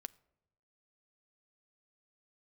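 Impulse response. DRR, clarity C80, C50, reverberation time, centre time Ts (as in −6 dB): 15.5 dB, 25.0 dB, 23.0 dB, 0.90 s, 1 ms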